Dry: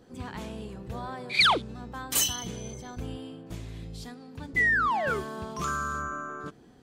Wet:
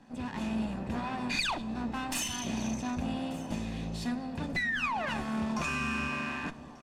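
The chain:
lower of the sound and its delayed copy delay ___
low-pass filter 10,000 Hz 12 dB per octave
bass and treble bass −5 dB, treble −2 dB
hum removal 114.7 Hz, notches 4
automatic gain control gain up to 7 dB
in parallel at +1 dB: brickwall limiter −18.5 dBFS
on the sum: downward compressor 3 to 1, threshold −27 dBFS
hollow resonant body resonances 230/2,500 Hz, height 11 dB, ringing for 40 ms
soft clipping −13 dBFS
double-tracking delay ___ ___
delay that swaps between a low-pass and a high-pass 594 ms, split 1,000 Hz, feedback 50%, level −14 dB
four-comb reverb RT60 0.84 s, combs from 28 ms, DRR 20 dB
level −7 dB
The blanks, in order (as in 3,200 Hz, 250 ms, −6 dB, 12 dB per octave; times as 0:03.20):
1.1 ms, 13 ms, −12.5 dB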